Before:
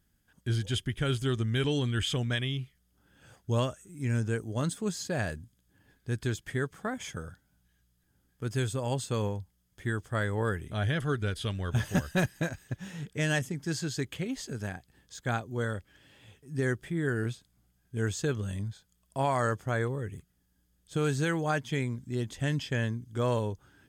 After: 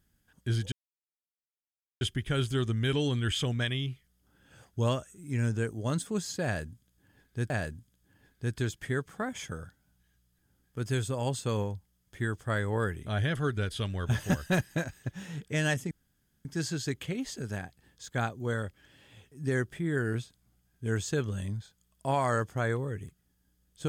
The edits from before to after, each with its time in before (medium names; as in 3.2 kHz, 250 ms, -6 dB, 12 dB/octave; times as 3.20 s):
0.72 s: insert silence 1.29 s
5.15–6.21 s: loop, 2 plays
13.56 s: insert room tone 0.54 s